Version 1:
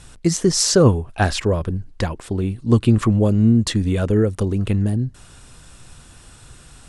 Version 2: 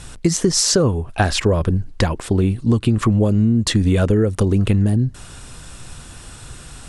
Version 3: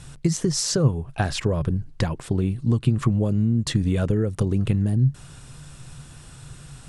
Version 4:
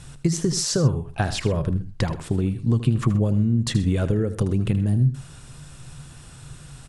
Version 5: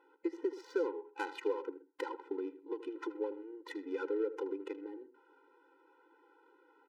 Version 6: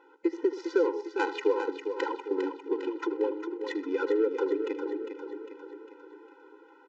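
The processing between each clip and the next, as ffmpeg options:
-af "alimiter=limit=-8.5dB:level=0:latency=1:release=408,acompressor=threshold=-19dB:ratio=5,volume=7dB"
-af "equalizer=f=140:w=3.7:g=14,volume=-8dB"
-af "aecho=1:1:78|128:0.224|0.112"
-af "bandpass=f=930:t=q:w=0.59:csg=0,adynamicsmooth=sensitivity=4:basefreq=1.1k,afftfilt=real='re*eq(mod(floor(b*sr/1024/260),2),1)':imag='im*eq(mod(floor(b*sr/1024/260),2),1)':win_size=1024:overlap=0.75,volume=-3.5dB"
-filter_complex "[0:a]asplit=2[a][b];[b]aecho=0:1:403|806|1209|1612|2015|2418:0.398|0.211|0.112|0.0593|0.0314|0.0166[c];[a][c]amix=inputs=2:normalize=0,aresample=16000,aresample=44100,volume=8.5dB"

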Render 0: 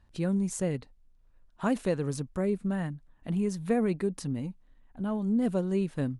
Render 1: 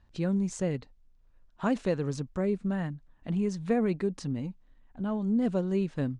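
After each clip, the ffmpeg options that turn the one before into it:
-af "lowpass=f=7.2k:w=0.5412,lowpass=f=7.2k:w=1.3066"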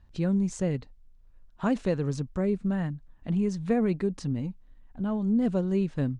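-af "lowshelf=f=160:g=6.5"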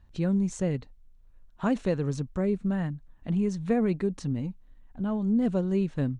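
-af "bandreject=f=4.9k:w=13"

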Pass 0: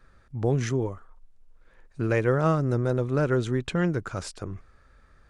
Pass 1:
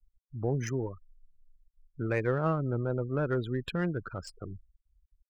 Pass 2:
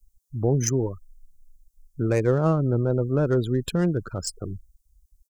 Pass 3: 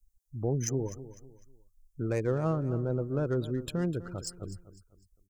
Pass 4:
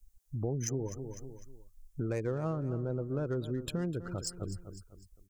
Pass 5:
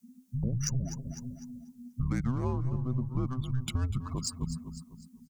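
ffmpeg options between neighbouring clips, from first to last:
-af "afftfilt=real='re*gte(hypot(re,im),0.0224)':imag='im*gte(hypot(re,im),0.0224)':win_size=1024:overlap=0.75,crystalizer=i=2.5:c=0,adynamicsmooth=sensitivity=3:basefreq=3.9k,volume=-6dB"
-af "firequalizer=gain_entry='entry(360,0);entry(1800,-10);entry(6500,11)':delay=0.05:min_phase=1,volume=8.5dB"
-af "aecho=1:1:251|502|753:0.178|0.0605|0.0206,volume=-8dB"
-af "acompressor=threshold=-43dB:ratio=2.5,volume=7dB"
-af "afreqshift=-260,aecho=1:1:244|488|732:0.106|0.0371|0.013,volume=3.5dB"

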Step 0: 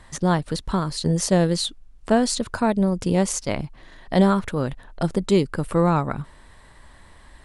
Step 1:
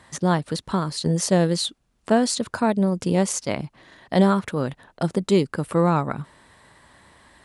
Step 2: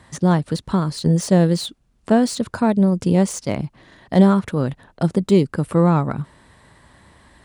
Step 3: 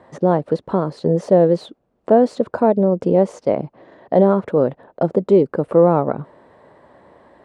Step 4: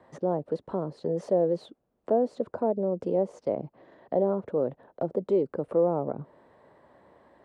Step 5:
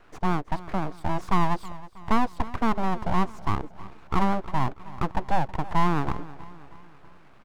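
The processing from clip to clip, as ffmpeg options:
-af "highpass=110"
-filter_complex "[0:a]lowshelf=f=280:g=8,acrossover=split=1300[a][b];[b]asoftclip=type=tanh:threshold=-23dB[c];[a][c]amix=inputs=2:normalize=0"
-filter_complex "[0:a]asplit=2[a][b];[b]alimiter=limit=-11.5dB:level=0:latency=1:release=98,volume=3dB[c];[a][c]amix=inputs=2:normalize=0,bandpass=f=530:t=q:w=1.8:csg=0,volume=3.5dB"
-filter_complex "[0:a]acrossover=split=310|840[a][b][c];[a]alimiter=limit=-22dB:level=0:latency=1[d];[c]acompressor=threshold=-39dB:ratio=5[e];[d][b][e]amix=inputs=3:normalize=0,volume=-9dB"
-af "aeval=exprs='abs(val(0))':c=same,aecho=1:1:320|640|960|1280:0.126|0.0642|0.0327|0.0167,volume=4.5dB"

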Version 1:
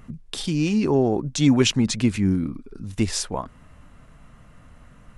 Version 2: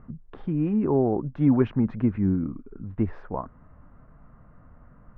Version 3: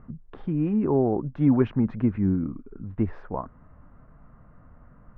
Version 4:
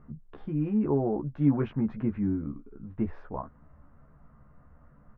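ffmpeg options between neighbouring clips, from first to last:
-af "lowpass=f=1.5k:w=0.5412,lowpass=f=1.5k:w=1.3066,volume=-2.5dB"
-af anull
-filter_complex "[0:a]asplit=2[a][b];[b]adelay=14,volume=-3.5dB[c];[a][c]amix=inputs=2:normalize=0,volume=-6dB"

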